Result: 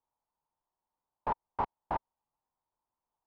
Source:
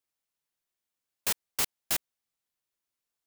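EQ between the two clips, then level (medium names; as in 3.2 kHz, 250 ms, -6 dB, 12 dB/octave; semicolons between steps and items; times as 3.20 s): resonant low-pass 920 Hz, resonance Q 6.6; distance through air 140 m; bass shelf 100 Hz +8 dB; 0.0 dB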